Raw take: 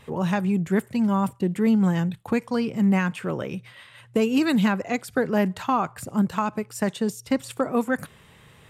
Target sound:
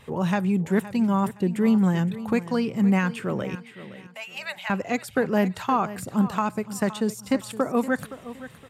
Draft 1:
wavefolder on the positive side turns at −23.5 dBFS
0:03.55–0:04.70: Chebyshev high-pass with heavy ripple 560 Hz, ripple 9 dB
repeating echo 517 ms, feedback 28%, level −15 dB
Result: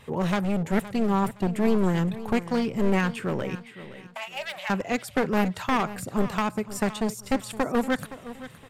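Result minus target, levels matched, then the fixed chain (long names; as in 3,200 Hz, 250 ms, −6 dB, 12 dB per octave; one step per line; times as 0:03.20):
wavefolder on the positive side: distortion +39 dB
wavefolder on the positive side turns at −14 dBFS
0:03.55–0:04.70: Chebyshev high-pass with heavy ripple 560 Hz, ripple 9 dB
repeating echo 517 ms, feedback 28%, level −15 dB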